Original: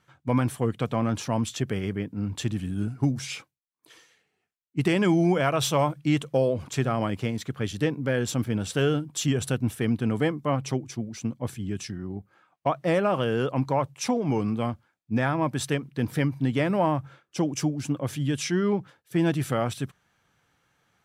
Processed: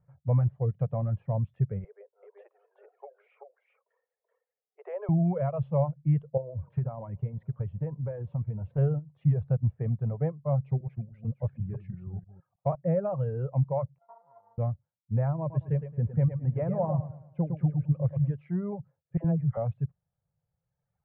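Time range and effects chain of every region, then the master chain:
0:01.84–0:05.09: Butterworth high-pass 400 Hz 96 dB per octave + high-shelf EQ 3,600 Hz −7.5 dB + single-tap delay 382 ms −3.5 dB
0:06.37–0:08.78: parametric band 960 Hz +9 dB 0.22 octaves + downward compressor 4 to 1, threshold −25 dBFS + feedback echo with a swinging delay time 198 ms, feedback 77%, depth 158 cents, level −24 dB
0:10.64–0:12.75: delay that plays each chunk backwards 160 ms, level −5.5 dB + high-shelf EQ 2,900 Hz +8 dB
0:13.98–0:14.58: samples sorted by size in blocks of 64 samples + pair of resonant band-passes 2,500 Hz, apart 2.8 octaves + spectral tilt +2 dB per octave
0:15.39–0:18.30: low-pass filter 9,000 Hz + repeating echo 109 ms, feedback 44%, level −4.5 dB
0:19.17–0:19.57: high-frequency loss of the air 190 metres + all-pass dispersion lows, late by 73 ms, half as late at 580 Hz
whole clip: Butterworth low-pass 2,200 Hz 36 dB per octave; reverb reduction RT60 1.8 s; drawn EQ curve 160 Hz 0 dB, 280 Hz −26 dB, 550 Hz −6 dB, 1,500 Hz −26 dB; level +5 dB

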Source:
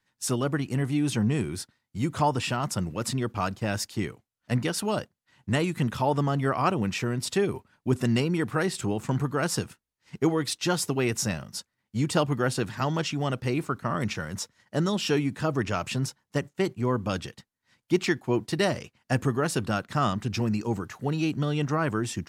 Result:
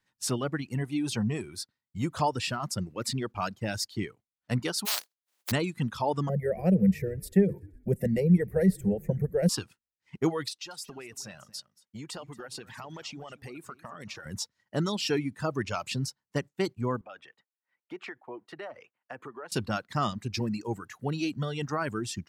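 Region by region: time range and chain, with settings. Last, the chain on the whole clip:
0:04.85–0:05.50: compressing power law on the bin magnitudes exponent 0.1 + high-pass filter 350 Hz
0:06.29–0:09.49: drawn EQ curve 130 Hz 0 dB, 190 Hz +15 dB, 270 Hz −12 dB, 510 Hz +11 dB, 1,200 Hz −27 dB, 1,900 Hz −1 dB, 3,100 Hz −19 dB, 7,300 Hz −12 dB, 13,000 Hz +7 dB + echo with shifted repeats 126 ms, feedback 55%, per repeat −51 Hz, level −18 dB
0:10.48–0:14.26: low-shelf EQ 240 Hz −9 dB + downward compressor 5 to 1, threshold −35 dBFS + single-tap delay 229 ms −11 dB
0:17.01–0:19.52: high-pass filter 120 Hz + three-way crossover with the lows and the highs turned down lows −17 dB, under 380 Hz, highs −21 dB, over 2,600 Hz + downward compressor 3 to 1, threshold −36 dBFS
whole clip: dynamic equaliser 4,500 Hz, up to +6 dB, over −50 dBFS, Q 2.6; reverb reduction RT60 1.7 s; level −2.5 dB

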